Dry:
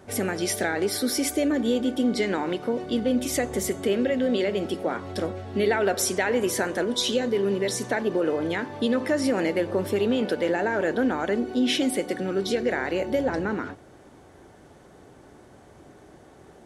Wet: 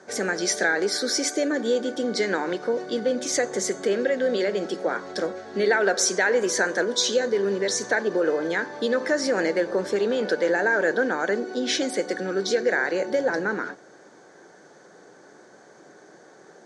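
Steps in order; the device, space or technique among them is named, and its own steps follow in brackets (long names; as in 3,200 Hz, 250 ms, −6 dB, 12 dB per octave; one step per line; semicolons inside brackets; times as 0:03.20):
television speaker (loudspeaker in its box 180–8,400 Hz, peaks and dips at 250 Hz −7 dB, 490 Hz +4 dB, 1,600 Hz +9 dB, 2,800 Hz −7 dB, 4,500 Hz +6 dB, 6,300 Hz +9 dB)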